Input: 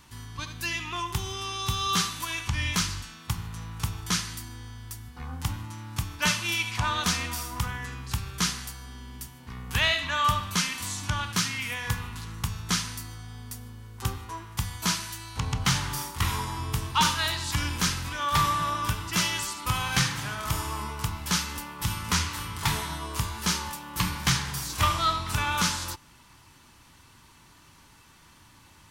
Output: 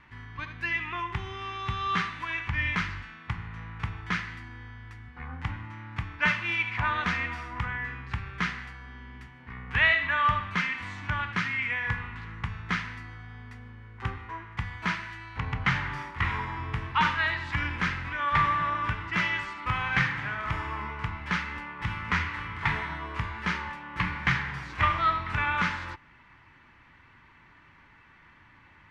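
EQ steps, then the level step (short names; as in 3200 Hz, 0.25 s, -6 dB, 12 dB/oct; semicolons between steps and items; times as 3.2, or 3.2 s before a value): synth low-pass 2000 Hz, resonance Q 3.1; -3.0 dB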